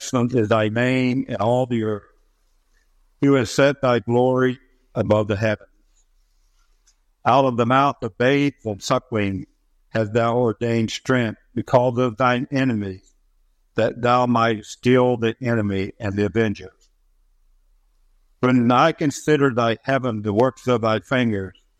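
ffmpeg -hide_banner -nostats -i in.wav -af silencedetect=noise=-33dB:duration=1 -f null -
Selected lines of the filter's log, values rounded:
silence_start: 1.99
silence_end: 3.22 | silence_duration: 1.24
silence_start: 5.61
silence_end: 7.25 | silence_duration: 1.64
silence_start: 16.67
silence_end: 18.43 | silence_duration: 1.76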